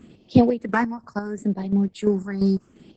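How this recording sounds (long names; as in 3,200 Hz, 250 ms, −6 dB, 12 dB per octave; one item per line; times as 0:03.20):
phaser sweep stages 4, 0.73 Hz, lowest notch 470–1,400 Hz
chopped level 2.9 Hz, depth 60%, duty 45%
Opus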